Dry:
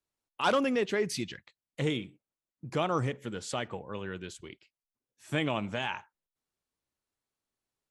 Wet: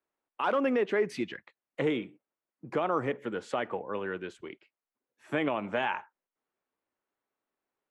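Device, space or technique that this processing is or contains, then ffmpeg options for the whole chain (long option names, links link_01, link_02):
DJ mixer with the lows and highs turned down: -filter_complex "[0:a]acrossover=split=230 2400:gain=0.141 1 0.112[link_01][link_02][link_03];[link_01][link_02][link_03]amix=inputs=3:normalize=0,alimiter=level_in=0.5dB:limit=-24dB:level=0:latency=1:release=122,volume=-0.5dB,volume=6dB"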